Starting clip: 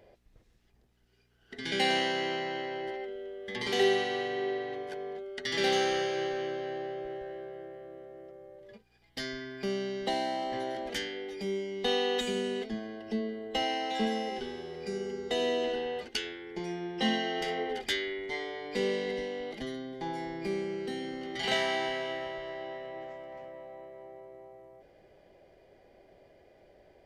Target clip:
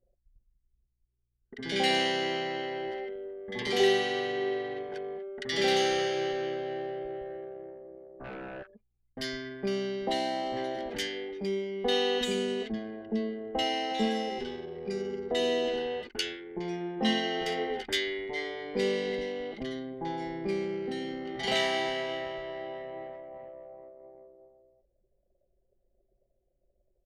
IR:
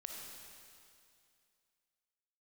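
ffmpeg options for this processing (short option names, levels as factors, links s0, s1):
-filter_complex "[0:a]asplit=3[s0][s1][s2];[s0]afade=t=out:st=8.19:d=0.02[s3];[s1]aeval=exprs='0.0112*sin(PI/2*3.98*val(0)/0.0112)':c=same,afade=t=in:st=8.19:d=0.02,afade=t=out:st=8.62:d=0.02[s4];[s2]afade=t=in:st=8.62:d=0.02[s5];[s3][s4][s5]amix=inputs=3:normalize=0,anlmdn=0.1,acrossover=split=1200[s6][s7];[s7]adelay=40[s8];[s6][s8]amix=inputs=2:normalize=0,volume=1.26"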